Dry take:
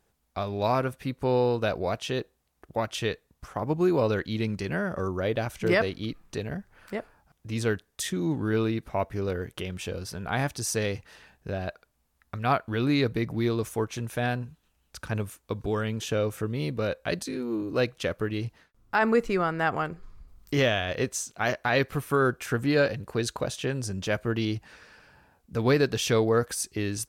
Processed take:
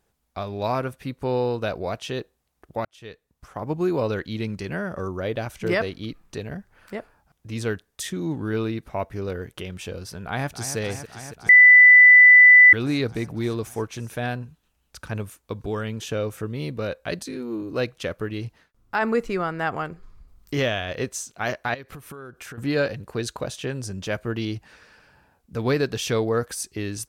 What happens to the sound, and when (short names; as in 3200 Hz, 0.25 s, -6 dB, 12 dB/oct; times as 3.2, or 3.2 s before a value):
2.85–3.71 fade in
10.24–10.77 echo throw 0.28 s, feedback 85%, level -10.5 dB
11.49–12.73 bleep 1990 Hz -7 dBFS
21.74–22.58 compressor 16:1, threshold -35 dBFS